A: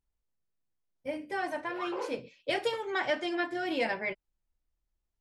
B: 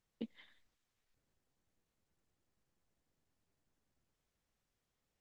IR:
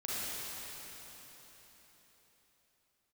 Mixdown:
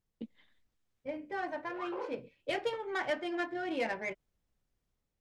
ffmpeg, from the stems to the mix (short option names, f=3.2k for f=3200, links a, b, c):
-filter_complex "[0:a]adynamicsmooth=sensitivity=3.5:basefreq=2.3k,volume=-6.5dB[a];[1:a]lowshelf=f=430:g=8,volume=-6dB[b];[a][b]amix=inputs=2:normalize=0,dynaudnorm=f=490:g=3:m=3.5dB"